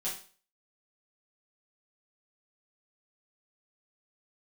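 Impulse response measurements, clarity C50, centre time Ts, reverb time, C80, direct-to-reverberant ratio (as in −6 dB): 6.5 dB, 31 ms, 0.40 s, 12.0 dB, −7.5 dB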